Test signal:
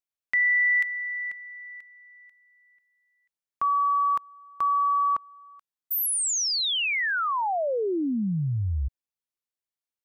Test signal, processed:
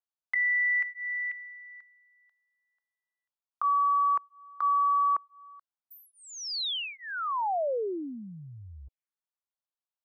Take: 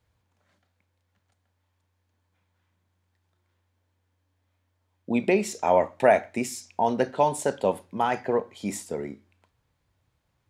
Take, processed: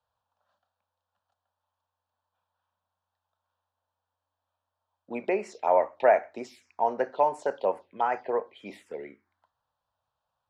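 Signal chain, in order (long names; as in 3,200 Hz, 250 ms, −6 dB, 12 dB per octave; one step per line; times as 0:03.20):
phaser swept by the level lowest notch 360 Hz, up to 3,600 Hz, full sweep at −21.5 dBFS
three-way crossover with the lows and the highs turned down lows −19 dB, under 390 Hz, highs −22 dB, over 4,200 Hz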